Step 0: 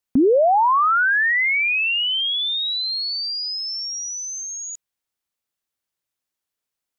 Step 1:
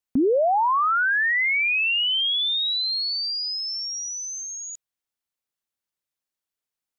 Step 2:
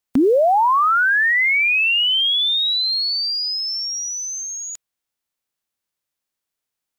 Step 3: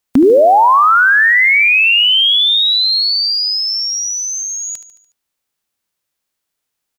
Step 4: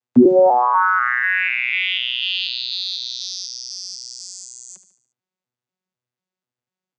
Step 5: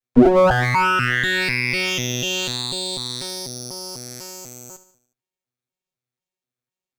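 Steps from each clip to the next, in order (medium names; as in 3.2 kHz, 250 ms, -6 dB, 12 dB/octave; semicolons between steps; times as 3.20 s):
dynamic bell 3.7 kHz, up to +4 dB, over -36 dBFS, Q 0.84; trim -4.5 dB
formants flattened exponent 0.6; trim +5 dB
feedback delay 73 ms, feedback 53%, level -13 dB; trim +6.5 dB
vocoder on a broken chord bare fifth, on B2, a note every 247 ms; trim -6.5 dB
comb filter that takes the minimum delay 7.6 ms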